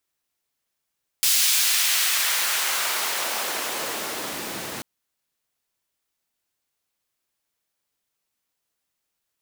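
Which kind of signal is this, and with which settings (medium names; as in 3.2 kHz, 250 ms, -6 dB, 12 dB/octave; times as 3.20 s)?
swept filtered noise pink, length 3.59 s highpass, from 4.1 kHz, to 180 Hz, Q 0.75, exponential, gain ramp -19 dB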